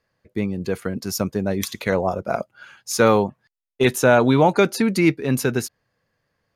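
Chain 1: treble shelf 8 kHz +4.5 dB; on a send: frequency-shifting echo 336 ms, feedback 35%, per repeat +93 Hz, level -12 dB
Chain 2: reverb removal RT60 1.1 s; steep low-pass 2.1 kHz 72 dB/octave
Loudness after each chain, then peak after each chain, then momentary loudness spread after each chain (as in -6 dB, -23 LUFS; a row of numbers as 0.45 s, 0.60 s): -20.5 LUFS, -22.0 LUFS; -4.0 dBFS, -4.0 dBFS; 15 LU, 13 LU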